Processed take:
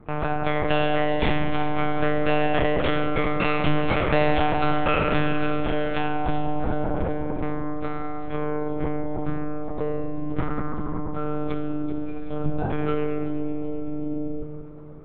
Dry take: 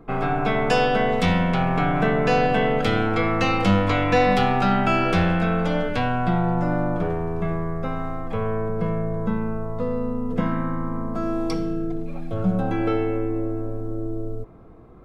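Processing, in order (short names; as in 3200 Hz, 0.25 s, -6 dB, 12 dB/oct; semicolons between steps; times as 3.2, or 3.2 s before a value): monotone LPC vocoder at 8 kHz 150 Hz; echo with dull and thin repeats by turns 0.19 s, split 920 Hz, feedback 67%, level -10.5 dB; gain -2 dB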